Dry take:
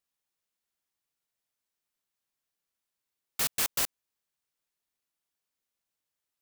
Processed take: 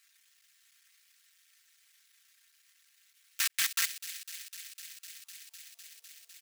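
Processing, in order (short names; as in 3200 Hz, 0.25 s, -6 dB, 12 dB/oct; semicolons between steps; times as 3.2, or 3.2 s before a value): cycle switcher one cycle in 2, muted; bell 5000 Hz +6 dB 2.9 oct; comb 4.4 ms, depth 94%; in parallel at -2 dB: negative-ratio compressor -33 dBFS, ratio -0.5; on the sum: high-pass sweep 1700 Hz -> 490 Hz, 4.92–5.86; on a send: thin delay 0.252 s, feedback 77%, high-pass 2300 Hz, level -12.5 dB; on the sum: mismatched tape noise reduction encoder only; gain -6.5 dB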